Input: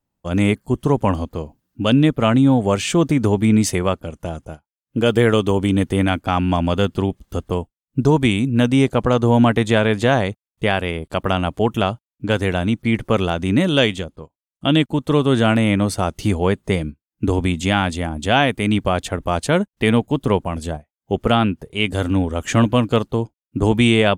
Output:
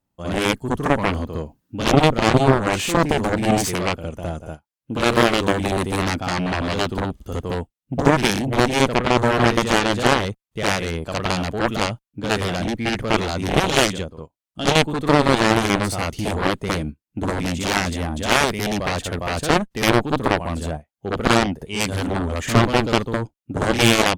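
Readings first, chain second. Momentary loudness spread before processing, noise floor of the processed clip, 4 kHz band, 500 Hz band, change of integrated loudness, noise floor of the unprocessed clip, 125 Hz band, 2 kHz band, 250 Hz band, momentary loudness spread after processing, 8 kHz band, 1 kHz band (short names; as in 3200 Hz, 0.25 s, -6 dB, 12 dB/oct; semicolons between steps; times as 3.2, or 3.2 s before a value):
11 LU, -81 dBFS, +1.5 dB, -1.5 dB, -2.0 dB, under -85 dBFS, -4.0 dB, +2.0 dB, -4.5 dB, 12 LU, +4.5 dB, +1.5 dB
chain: reverse echo 61 ms -7 dB; added harmonics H 3 -16 dB, 4 -16 dB, 7 -13 dB, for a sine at -1.5 dBFS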